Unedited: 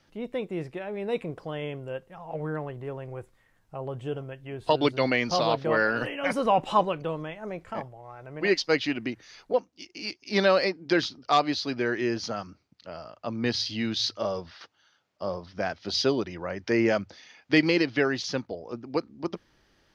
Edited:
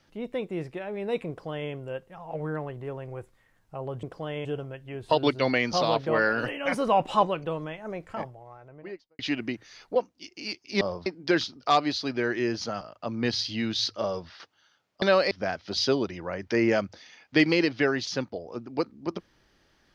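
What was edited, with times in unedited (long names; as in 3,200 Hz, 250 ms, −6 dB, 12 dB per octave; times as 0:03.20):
0:01.29–0:01.71: duplicate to 0:04.03
0:07.77–0:08.77: fade out and dull
0:10.39–0:10.68: swap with 0:15.23–0:15.48
0:12.43–0:13.02: remove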